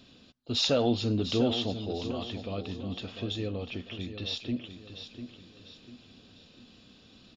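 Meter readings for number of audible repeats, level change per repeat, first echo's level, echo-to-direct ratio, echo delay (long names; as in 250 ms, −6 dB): 4, −8.0 dB, −10.0 dB, −9.5 dB, 697 ms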